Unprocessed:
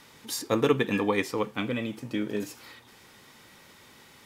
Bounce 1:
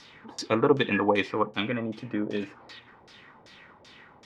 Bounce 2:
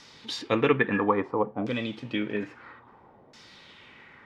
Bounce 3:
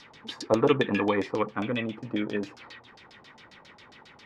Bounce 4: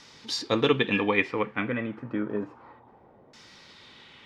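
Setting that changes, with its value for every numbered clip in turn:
LFO low-pass, rate: 2.6 Hz, 0.6 Hz, 7.4 Hz, 0.3 Hz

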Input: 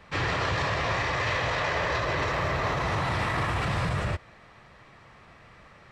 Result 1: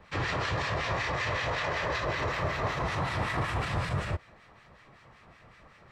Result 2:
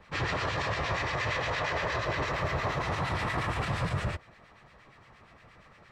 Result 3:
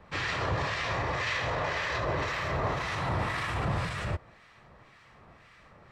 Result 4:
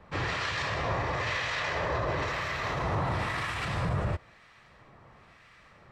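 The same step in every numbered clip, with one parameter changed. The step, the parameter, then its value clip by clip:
harmonic tremolo, rate: 5.3 Hz, 8.6 Hz, 1.9 Hz, 1 Hz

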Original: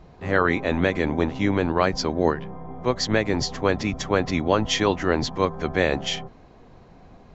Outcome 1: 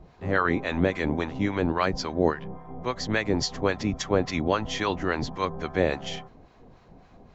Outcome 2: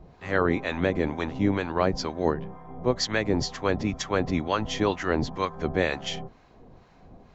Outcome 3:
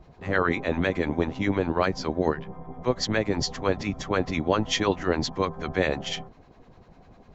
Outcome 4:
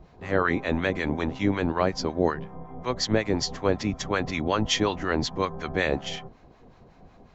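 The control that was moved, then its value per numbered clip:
harmonic tremolo, rate: 3.6 Hz, 2.1 Hz, 10 Hz, 5.4 Hz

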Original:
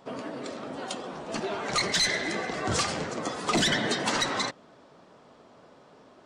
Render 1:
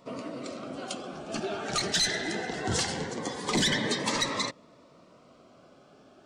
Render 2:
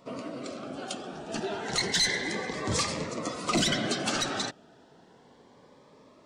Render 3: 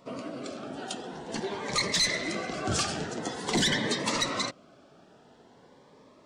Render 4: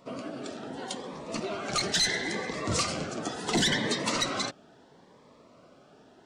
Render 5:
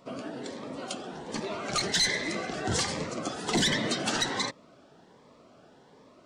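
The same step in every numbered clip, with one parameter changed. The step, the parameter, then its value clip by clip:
Shepard-style phaser, rate: 0.21 Hz, 0.31 Hz, 0.47 Hz, 0.73 Hz, 1.3 Hz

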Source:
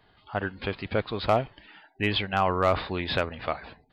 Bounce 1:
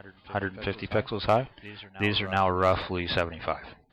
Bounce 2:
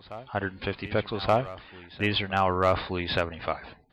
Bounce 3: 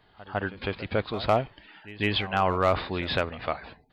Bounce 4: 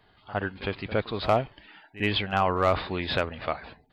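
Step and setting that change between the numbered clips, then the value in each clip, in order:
reverse echo, time: 374 ms, 1177 ms, 153 ms, 62 ms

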